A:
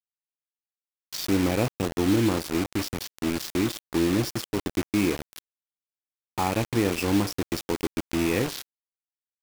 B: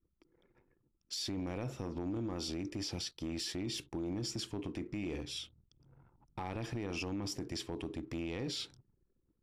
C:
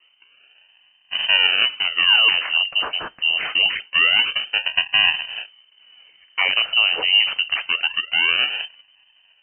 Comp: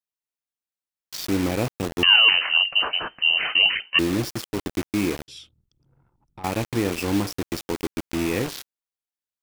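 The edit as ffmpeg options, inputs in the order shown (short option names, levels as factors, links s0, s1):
-filter_complex "[0:a]asplit=3[s0][s1][s2];[s0]atrim=end=2.032[s3];[2:a]atrim=start=2.028:end=3.992[s4];[s1]atrim=start=3.988:end=5.282[s5];[1:a]atrim=start=5.278:end=6.442[s6];[s2]atrim=start=6.438[s7];[s3][s4]acrossfade=d=0.004:c1=hsin:c2=hsin[s8];[s8][s5]acrossfade=d=0.004:c1=hsin:c2=hsin[s9];[s9][s6]acrossfade=d=0.004:c1=hsin:c2=hsin[s10];[s10][s7]acrossfade=d=0.004:c1=hsin:c2=hsin"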